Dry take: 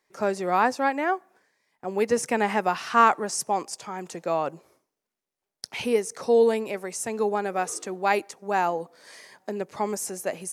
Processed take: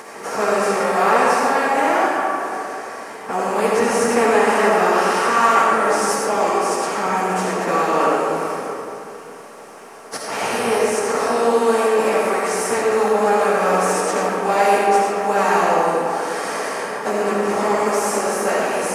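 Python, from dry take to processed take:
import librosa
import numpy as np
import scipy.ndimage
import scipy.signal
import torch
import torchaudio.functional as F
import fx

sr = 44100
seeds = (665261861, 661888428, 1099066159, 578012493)

y = fx.bin_compress(x, sr, power=0.4)
y = fx.stretch_vocoder_free(y, sr, factor=1.8)
y = fx.rev_freeverb(y, sr, rt60_s=2.6, hf_ratio=0.5, predelay_ms=30, drr_db=-3.5)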